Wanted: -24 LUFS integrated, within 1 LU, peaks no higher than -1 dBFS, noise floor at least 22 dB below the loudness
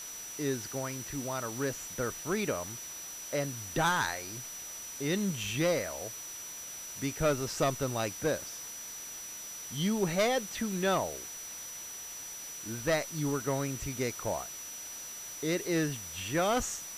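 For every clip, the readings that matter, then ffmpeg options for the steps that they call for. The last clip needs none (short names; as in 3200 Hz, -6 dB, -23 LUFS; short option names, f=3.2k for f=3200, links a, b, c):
steady tone 5900 Hz; tone level -42 dBFS; noise floor -43 dBFS; noise floor target -56 dBFS; loudness -33.5 LUFS; peak -17.5 dBFS; loudness target -24.0 LUFS
-> -af "bandreject=f=5.9k:w=30"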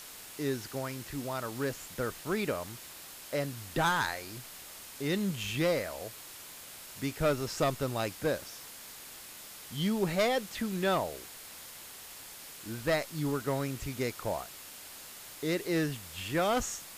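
steady tone none; noise floor -48 dBFS; noise floor target -55 dBFS
-> -af "afftdn=nr=7:nf=-48"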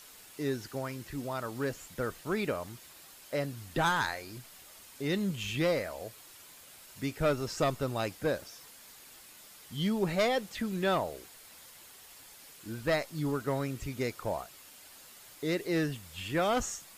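noise floor -54 dBFS; noise floor target -55 dBFS
-> -af "afftdn=nr=6:nf=-54"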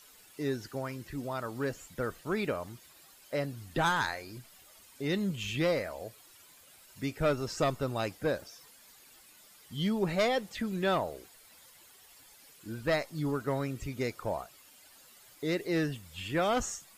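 noise floor -58 dBFS; loudness -33.0 LUFS; peak -18.0 dBFS; loudness target -24.0 LUFS
-> -af "volume=9dB"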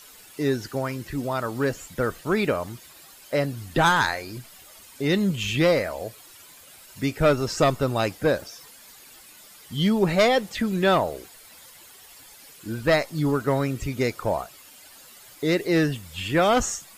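loudness -24.0 LUFS; peak -9.0 dBFS; noise floor -49 dBFS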